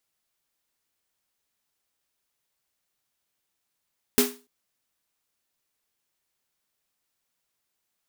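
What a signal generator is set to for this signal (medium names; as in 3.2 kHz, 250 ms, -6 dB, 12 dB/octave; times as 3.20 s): snare drum length 0.29 s, tones 250 Hz, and 410 Hz, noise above 640 Hz, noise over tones 0 dB, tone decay 0.31 s, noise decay 0.30 s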